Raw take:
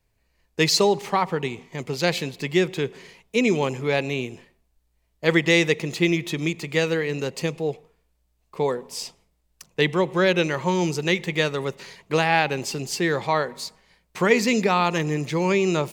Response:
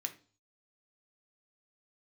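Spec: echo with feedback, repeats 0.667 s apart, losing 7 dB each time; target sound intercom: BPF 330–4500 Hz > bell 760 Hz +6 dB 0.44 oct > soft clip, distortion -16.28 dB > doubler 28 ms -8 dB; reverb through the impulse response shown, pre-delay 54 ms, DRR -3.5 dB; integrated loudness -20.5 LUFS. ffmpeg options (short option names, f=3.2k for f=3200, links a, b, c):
-filter_complex "[0:a]aecho=1:1:667|1334|2001|2668|3335:0.447|0.201|0.0905|0.0407|0.0183,asplit=2[a][b];[1:a]atrim=start_sample=2205,adelay=54[c];[b][c]afir=irnorm=-1:irlink=0,volume=4dB[d];[a][d]amix=inputs=2:normalize=0,highpass=330,lowpass=4.5k,equalizer=f=760:t=o:w=0.44:g=6,asoftclip=threshold=-10.5dB,asplit=2[e][f];[f]adelay=28,volume=-8dB[g];[e][g]amix=inputs=2:normalize=0"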